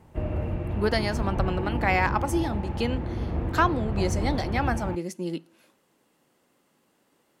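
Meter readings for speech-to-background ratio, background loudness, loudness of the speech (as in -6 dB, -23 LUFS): 2.0 dB, -30.5 LUFS, -28.5 LUFS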